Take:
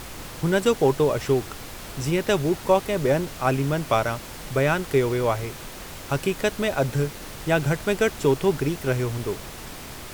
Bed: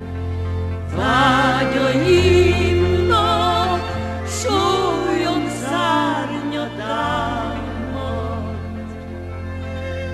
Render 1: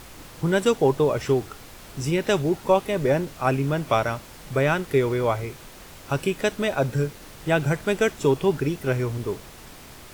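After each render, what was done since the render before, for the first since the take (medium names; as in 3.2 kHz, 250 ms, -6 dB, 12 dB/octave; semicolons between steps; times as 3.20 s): noise print and reduce 6 dB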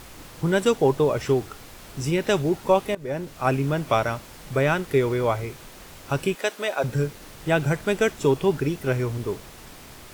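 2.95–3.46 s: fade in, from -19.5 dB; 6.35–6.84 s: high-pass 460 Hz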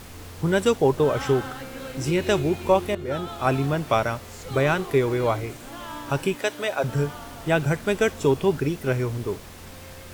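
add bed -19.5 dB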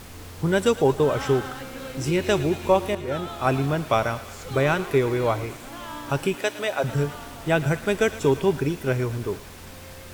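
thinning echo 112 ms, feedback 81%, high-pass 810 Hz, level -15 dB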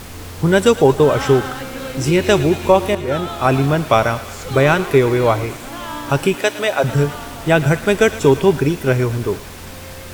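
trim +8 dB; peak limiter -1 dBFS, peak gain reduction 2 dB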